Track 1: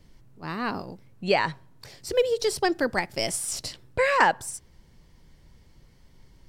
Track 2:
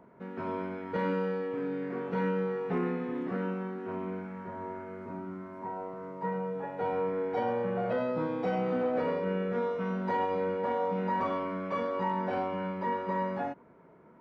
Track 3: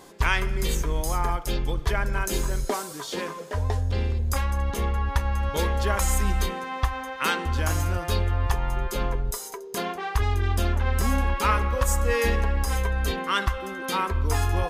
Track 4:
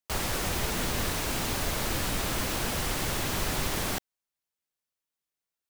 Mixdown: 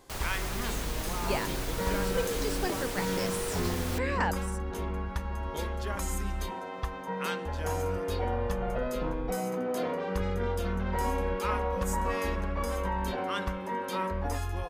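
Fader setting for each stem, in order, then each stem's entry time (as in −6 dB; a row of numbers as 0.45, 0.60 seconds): −10.5, −2.5, −10.0, −7.0 decibels; 0.00, 0.85, 0.00, 0.00 seconds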